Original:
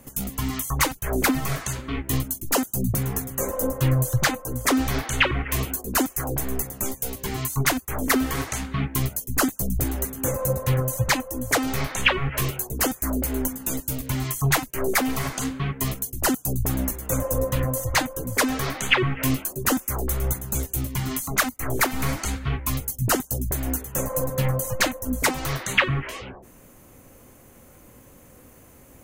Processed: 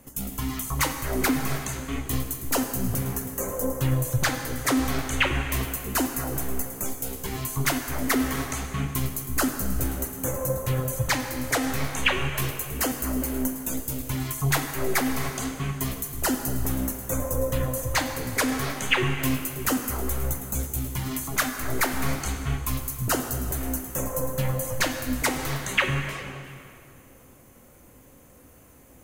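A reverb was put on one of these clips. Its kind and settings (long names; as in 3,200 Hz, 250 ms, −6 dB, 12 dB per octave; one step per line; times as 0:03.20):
dense smooth reverb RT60 2.4 s, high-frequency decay 0.85×, DRR 5.5 dB
level −3.5 dB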